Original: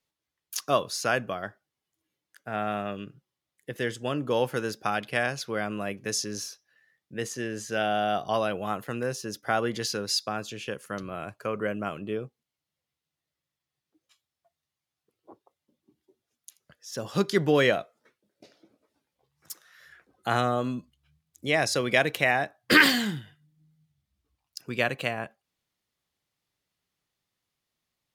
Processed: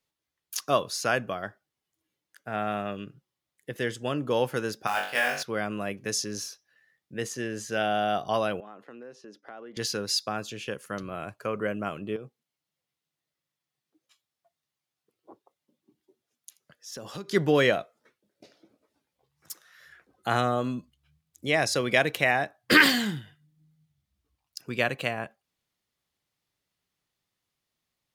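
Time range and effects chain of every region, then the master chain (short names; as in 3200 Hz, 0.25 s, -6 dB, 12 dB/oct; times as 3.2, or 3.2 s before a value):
4.87–5.43 HPF 760 Hz 6 dB/oct + short-mantissa float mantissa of 2-bit + flutter echo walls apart 3.5 m, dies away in 0.48 s
8.6–9.77 ladder high-pass 190 Hz, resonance 20% + tape spacing loss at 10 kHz 22 dB + compressor 3:1, threshold -43 dBFS
12.16–17.31 HPF 120 Hz + compressor 4:1, threshold -36 dBFS
whole clip: dry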